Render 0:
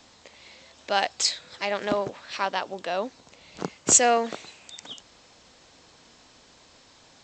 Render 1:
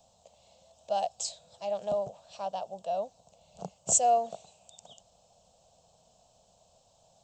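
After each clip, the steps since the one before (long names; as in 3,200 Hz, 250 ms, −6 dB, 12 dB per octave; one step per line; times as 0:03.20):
drawn EQ curve 190 Hz 0 dB, 300 Hz −20 dB, 670 Hz +8 dB, 1,000 Hz −8 dB, 2,000 Hz −27 dB, 2,800 Hz −9 dB, 4,800 Hz −9 dB, 9,900 Hz +6 dB
level −6.5 dB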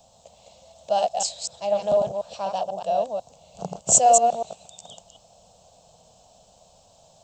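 delay that plays each chunk backwards 123 ms, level −3.5 dB
level +7.5 dB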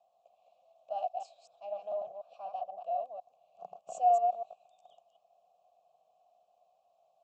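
formant filter a
level −8 dB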